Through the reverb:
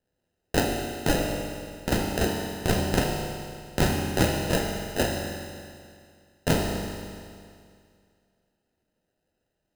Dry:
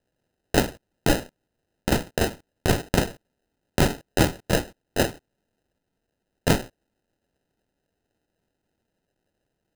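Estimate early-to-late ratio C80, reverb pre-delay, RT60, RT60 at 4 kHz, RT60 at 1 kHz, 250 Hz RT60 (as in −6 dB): 3.0 dB, 9 ms, 2.2 s, 2.2 s, 2.2 s, 2.2 s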